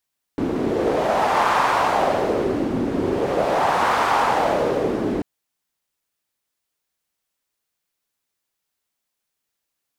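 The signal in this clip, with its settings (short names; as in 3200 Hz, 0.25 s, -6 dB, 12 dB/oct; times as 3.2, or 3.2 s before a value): wind-like swept noise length 4.84 s, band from 300 Hz, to 1000 Hz, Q 2.3, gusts 2, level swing 4 dB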